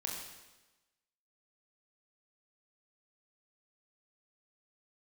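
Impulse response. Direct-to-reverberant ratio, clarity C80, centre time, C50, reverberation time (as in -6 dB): -1.5 dB, 4.0 dB, 58 ms, 2.5 dB, 1.1 s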